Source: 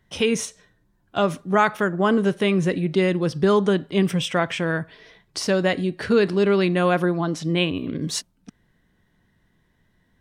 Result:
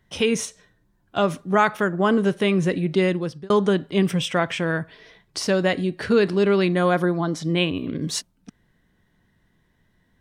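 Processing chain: 3.08–3.5 fade out; 6.72–7.46 notch 2700 Hz, Q 5.3

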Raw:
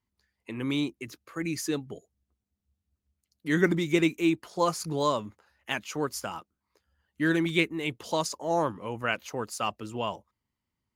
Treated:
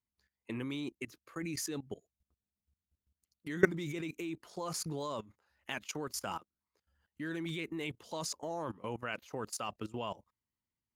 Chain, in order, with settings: level quantiser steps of 19 dB

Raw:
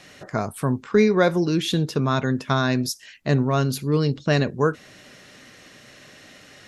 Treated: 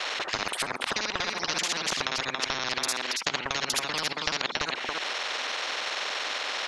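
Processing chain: local time reversal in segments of 48 ms; Chebyshev high-pass 910 Hz, order 3; transient shaper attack +3 dB, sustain -5 dB; compressor, threshold -30 dBFS, peak gain reduction 11.5 dB; LPF 1800 Hz 12 dB/oct; echo 0.278 s -10 dB; spectral compressor 10:1; gain +9 dB

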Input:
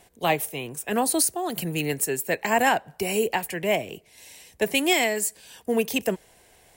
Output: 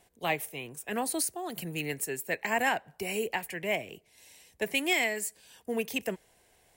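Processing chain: dynamic EQ 2100 Hz, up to +6 dB, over -41 dBFS, Q 1.8; gain -8.5 dB

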